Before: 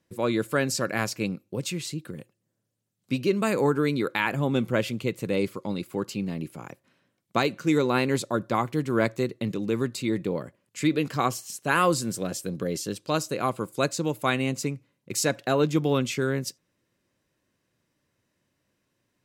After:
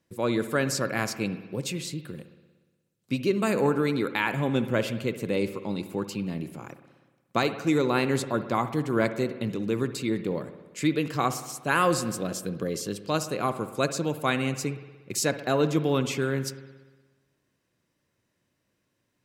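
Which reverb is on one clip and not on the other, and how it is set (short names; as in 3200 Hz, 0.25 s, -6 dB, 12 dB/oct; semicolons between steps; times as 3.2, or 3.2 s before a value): spring tank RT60 1.3 s, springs 59 ms, chirp 50 ms, DRR 11 dB; gain -1 dB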